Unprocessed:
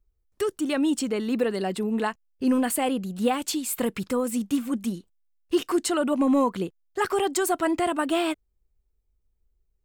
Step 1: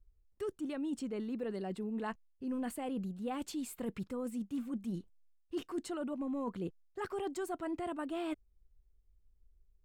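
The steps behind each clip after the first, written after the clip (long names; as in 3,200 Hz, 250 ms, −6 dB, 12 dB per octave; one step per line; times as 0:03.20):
spectral tilt −2 dB per octave
reversed playback
downward compressor 6 to 1, threshold −30 dBFS, peak gain reduction 14.5 dB
reversed playback
level −6 dB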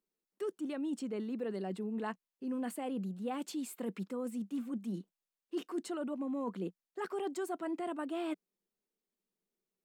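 elliptic high-pass filter 180 Hz, stop band 40 dB
level +1 dB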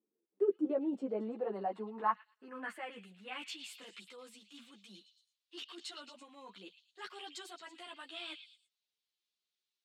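band-pass filter sweep 320 Hz → 3,700 Hz, 0:00.07–0:03.99
echo through a band-pass that steps 111 ms, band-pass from 3,200 Hz, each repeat 0.7 octaves, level −8 dB
string-ensemble chorus
level +13.5 dB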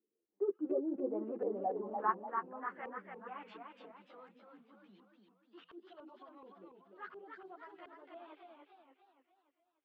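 auto-filter low-pass saw up 1.4 Hz 420–1,700 Hz
feedback echo with a swinging delay time 291 ms, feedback 49%, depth 148 cents, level −4.5 dB
level −5.5 dB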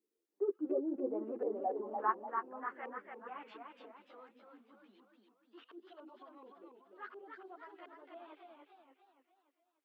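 linear-phase brick-wall high-pass 210 Hz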